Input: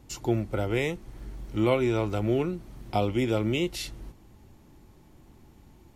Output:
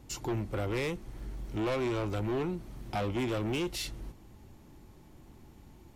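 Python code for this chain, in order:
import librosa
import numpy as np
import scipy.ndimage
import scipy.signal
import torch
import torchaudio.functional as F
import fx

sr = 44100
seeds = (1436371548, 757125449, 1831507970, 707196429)

y = 10.0 ** (-28.0 / 20.0) * np.tanh(x / 10.0 ** (-28.0 / 20.0))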